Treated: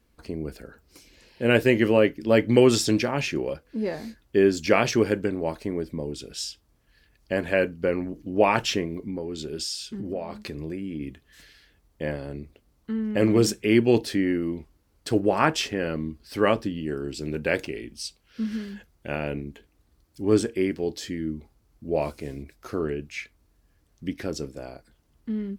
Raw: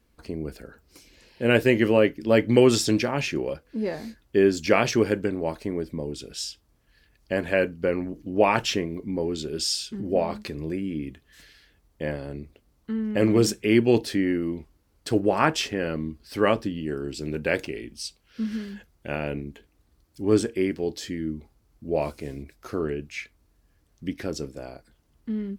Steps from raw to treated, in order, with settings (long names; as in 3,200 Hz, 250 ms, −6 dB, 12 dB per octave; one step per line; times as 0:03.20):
0:08.99–0:11.01: downward compressor 4 to 1, threshold −29 dBFS, peak gain reduction 10 dB